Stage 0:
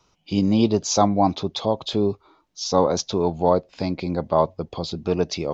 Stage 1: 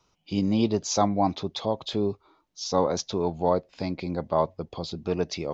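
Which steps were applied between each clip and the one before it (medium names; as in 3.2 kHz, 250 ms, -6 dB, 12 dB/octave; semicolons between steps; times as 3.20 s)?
dynamic bell 1.9 kHz, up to +5 dB, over -44 dBFS, Q 2.7; trim -5 dB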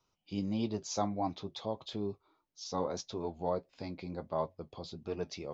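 flange 1.6 Hz, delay 7.3 ms, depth 3 ms, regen -56%; trim -6.5 dB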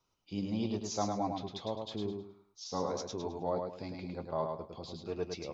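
feedback delay 105 ms, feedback 30%, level -4.5 dB; trim -1 dB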